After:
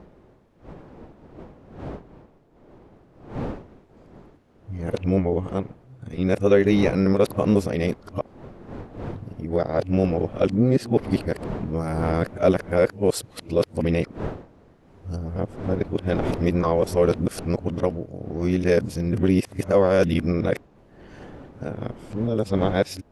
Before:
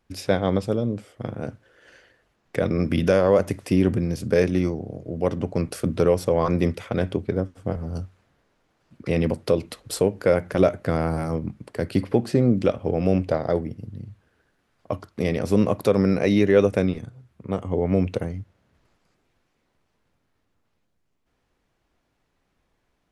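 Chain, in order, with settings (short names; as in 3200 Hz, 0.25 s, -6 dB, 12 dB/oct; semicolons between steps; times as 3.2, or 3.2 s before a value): whole clip reversed; wind noise 420 Hz -38 dBFS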